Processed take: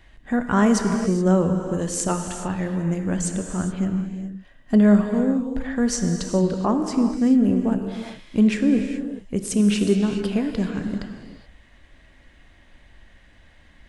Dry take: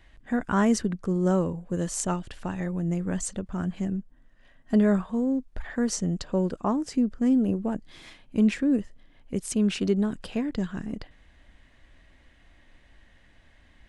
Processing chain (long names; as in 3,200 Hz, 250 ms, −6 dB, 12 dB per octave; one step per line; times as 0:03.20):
reverb whose tail is shaped and stops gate 450 ms flat, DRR 5 dB
level +4 dB